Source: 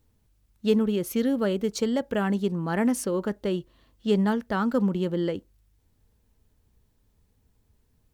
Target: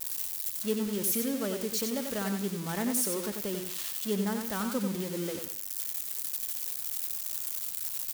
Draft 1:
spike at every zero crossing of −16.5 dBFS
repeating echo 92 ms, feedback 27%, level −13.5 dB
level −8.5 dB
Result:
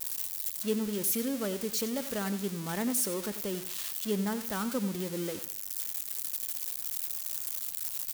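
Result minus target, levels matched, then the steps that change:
echo-to-direct −7.5 dB
change: repeating echo 92 ms, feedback 27%, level −6 dB

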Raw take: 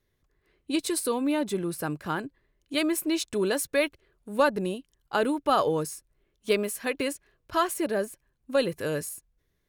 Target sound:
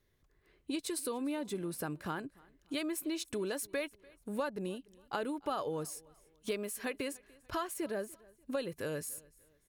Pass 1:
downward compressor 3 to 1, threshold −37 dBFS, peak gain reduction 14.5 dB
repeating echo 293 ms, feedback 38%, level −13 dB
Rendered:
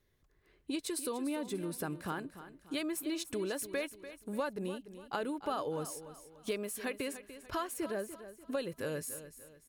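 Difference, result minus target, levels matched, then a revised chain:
echo-to-direct +11.5 dB
downward compressor 3 to 1, threshold −37 dBFS, peak gain reduction 14.5 dB
repeating echo 293 ms, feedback 38%, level −24.5 dB

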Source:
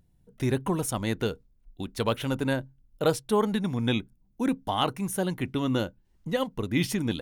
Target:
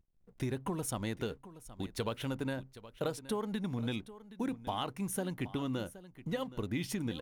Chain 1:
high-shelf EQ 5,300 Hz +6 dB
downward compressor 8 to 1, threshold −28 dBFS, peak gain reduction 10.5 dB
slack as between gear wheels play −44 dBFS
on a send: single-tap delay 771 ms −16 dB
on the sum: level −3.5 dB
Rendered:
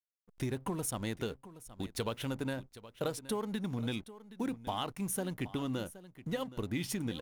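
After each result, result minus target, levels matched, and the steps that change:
slack as between gear wheels: distortion +9 dB; 8,000 Hz band +2.5 dB
change: slack as between gear wheels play −54.5 dBFS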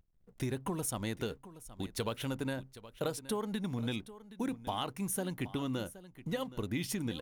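8,000 Hz band +3.0 dB
remove: high-shelf EQ 5,300 Hz +6 dB

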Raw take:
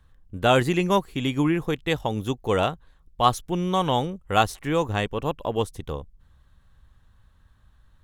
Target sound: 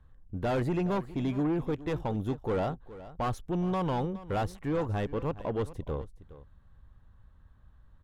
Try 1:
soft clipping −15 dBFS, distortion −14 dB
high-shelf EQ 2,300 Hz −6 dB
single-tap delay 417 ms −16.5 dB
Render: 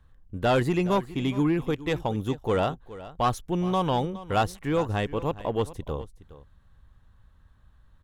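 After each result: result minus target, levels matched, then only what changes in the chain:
4,000 Hz band +6.0 dB; soft clipping: distortion −7 dB
change: high-shelf EQ 2,300 Hz −16 dB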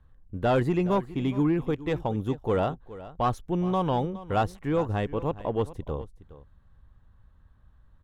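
soft clipping: distortion −7 dB
change: soft clipping −24.5 dBFS, distortion −6 dB

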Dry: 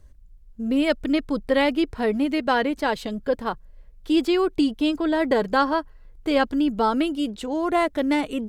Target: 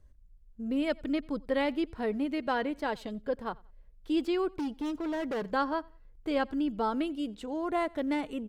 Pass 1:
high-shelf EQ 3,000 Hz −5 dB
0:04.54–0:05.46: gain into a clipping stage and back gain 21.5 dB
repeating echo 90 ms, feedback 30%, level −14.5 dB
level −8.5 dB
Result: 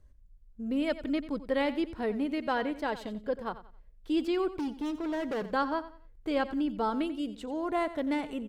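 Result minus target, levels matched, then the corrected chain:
echo-to-direct +11 dB
high-shelf EQ 3,000 Hz −5 dB
0:04.54–0:05.46: gain into a clipping stage and back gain 21.5 dB
repeating echo 90 ms, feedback 30%, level −25.5 dB
level −8.5 dB

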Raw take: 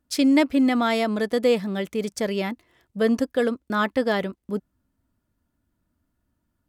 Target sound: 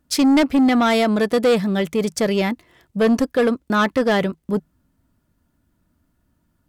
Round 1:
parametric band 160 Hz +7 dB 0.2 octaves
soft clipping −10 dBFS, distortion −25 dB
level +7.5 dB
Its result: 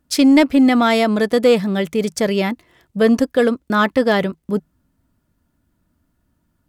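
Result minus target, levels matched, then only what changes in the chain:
soft clipping: distortion −12 dB
change: soft clipping −18.5 dBFS, distortion −13 dB

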